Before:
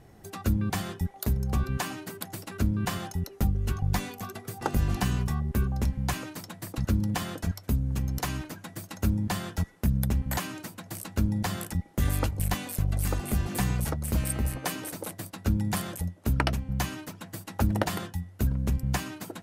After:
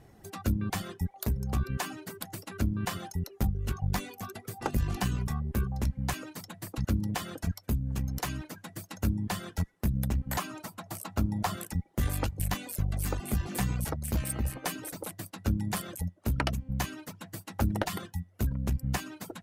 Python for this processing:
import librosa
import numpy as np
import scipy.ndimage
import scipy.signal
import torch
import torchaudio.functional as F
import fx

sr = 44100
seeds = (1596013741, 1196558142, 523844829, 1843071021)

y = fx.tube_stage(x, sr, drive_db=16.0, bias=0.45)
y = fx.dereverb_blind(y, sr, rt60_s=0.51)
y = fx.spec_box(y, sr, start_s=10.39, length_s=1.16, low_hz=590.0, high_hz=1400.0, gain_db=6)